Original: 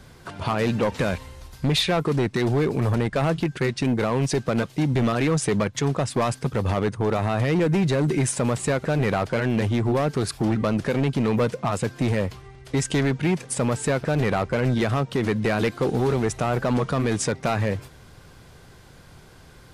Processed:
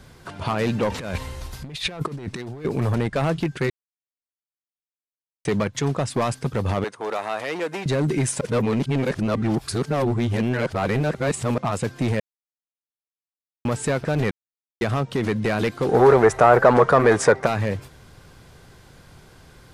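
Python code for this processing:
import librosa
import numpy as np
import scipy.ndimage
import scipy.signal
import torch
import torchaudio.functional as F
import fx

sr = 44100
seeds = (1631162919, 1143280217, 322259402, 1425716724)

y = fx.over_compress(x, sr, threshold_db=-28.0, ratio=-0.5, at=(0.9, 2.65))
y = fx.highpass(y, sr, hz=510.0, slope=12, at=(6.84, 7.86))
y = fx.band_shelf(y, sr, hz=870.0, db=12.0, octaves=2.7, at=(15.89, 17.45), fade=0.02)
y = fx.edit(y, sr, fx.silence(start_s=3.7, length_s=1.75),
    fx.reverse_span(start_s=8.41, length_s=3.17),
    fx.silence(start_s=12.2, length_s=1.45),
    fx.silence(start_s=14.31, length_s=0.5), tone=tone)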